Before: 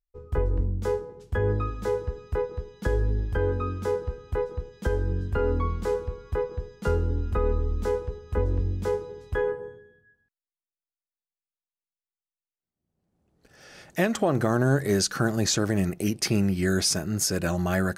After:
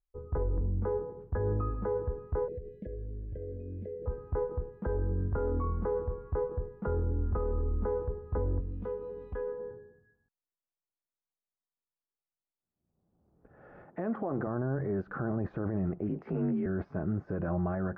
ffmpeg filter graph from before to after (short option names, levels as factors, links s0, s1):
-filter_complex "[0:a]asettb=1/sr,asplit=3[s0][s1][s2];[s0]atrim=end=2.484[s3];[s1]atrim=start=2.48:end=4.06,asetpts=PTS-STARTPTS,afade=t=in:d=0.004:c=qsin,afade=t=out:st=1.576:d=0.004:c=qsin,highshelf=f=2900:g=11,acompressor=threshold=0.0178:ratio=16:attack=3.2:release=140:knee=1:detection=peak,asuperstop=centerf=1100:order=12:qfactor=0.91[s4];[s2]atrim=start=4.056[s5];[s3][s4]acrossfade=d=0.004:c1=hsin:c2=qsin[s6];[s6][s5]acrossfade=d=0.004:c1=qsin:c2=hsin,asettb=1/sr,asplit=3[s7][s8][s9];[s7]atrim=end=8.604[s10];[s8]atrim=start=8.6:end=9.71,asetpts=PTS-STARTPTS,afade=t=in:d=0.004:c=qsin,afade=t=out:st=1.106:d=0.004:c=qsin,highshelf=f=2200:t=q:w=1.5:g=12,aecho=1:1:4.1:0.74,atrim=end_sample=48951,acompressor=threshold=0.0126:ratio=2.5:attack=3.2:release=140:knee=1:detection=peak[s11];[s9]atrim=start=9.706[s12];[s10][s11]acrossfade=d=0.004:c1=hsin:c2=qsin[s13];[s13][s12]acrossfade=d=0.004:c1=qsin:c2=hsin,asettb=1/sr,asplit=3[s14][s15][s16];[s14]atrim=end=13.844[s17];[s15]atrim=start=13.84:end=14.47,asetpts=PTS-STARTPTS,afade=t=in:d=0.004:c=qsin,afade=t=out:st=0.626:d=0.004:c=qsin,highpass=170,bandreject=f=600:w=15[s18];[s16]atrim=start=14.466[s19];[s17][s18]acrossfade=d=0.004:c1=hsin:c2=qsin[s20];[s20][s19]acrossfade=d=0.004:c1=qsin:c2=hsin,asettb=1/sr,asplit=3[s21][s22][s23];[s21]atrim=end=16.094[s24];[s22]atrim=start=16.09:end=16.66,asetpts=PTS-STARTPTS,afade=t=in:d=0.004:c=qsin,afade=t=out:st=0.566:d=0.004:c=qsin,highshelf=f=2900:g=11.5,asplit=2[s25][s26];[s26]adelay=17,volume=0.708[s27];[s25][s27]amix=inputs=2:normalize=0,atrim=end_sample=25137,afreqshift=41[s28];[s23]atrim=start=16.656[s29];[s24][s28]acrossfade=d=0.004:c1=hsin:c2=qsin[s30];[s30][s29]acrossfade=d=0.004:c1=qsin:c2=hsin,alimiter=limit=0.0668:level=0:latency=1:release=24,lowpass=f=1300:w=0.5412,lowpass=f=1300:w=1.3066"